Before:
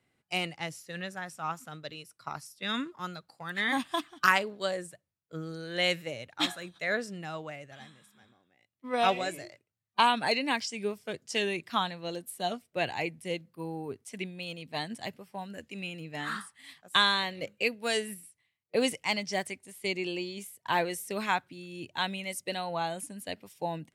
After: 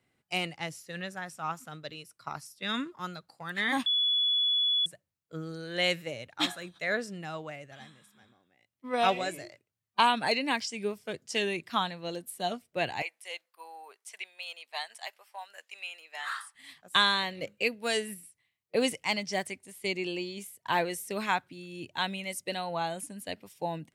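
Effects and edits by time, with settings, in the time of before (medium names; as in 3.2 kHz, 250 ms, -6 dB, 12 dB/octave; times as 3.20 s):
3.86–4.86 s: bleep 3.41 kHz -23.5 dBFS
13.02–16.55 s: high-pass 720 Hz 24 dB/octave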